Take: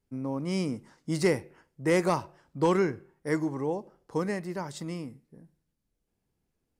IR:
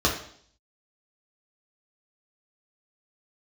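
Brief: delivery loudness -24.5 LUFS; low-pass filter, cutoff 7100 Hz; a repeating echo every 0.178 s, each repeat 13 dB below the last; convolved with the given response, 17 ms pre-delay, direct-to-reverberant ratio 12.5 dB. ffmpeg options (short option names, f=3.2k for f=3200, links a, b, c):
-filter_complex "[0:a]lowpass=7.1k,aecho=1:1:178|356|534:0.224|0.0493|0.0108,asplit=2[a][b];[1:a]atrim=start_sample=2205,adelay=17[c];[b][c]afir=irnorm=-1:irlink=0,volume=-27.5dB[d];[a][d]amix=inputs=2:normalize=0,volume=5.5dB"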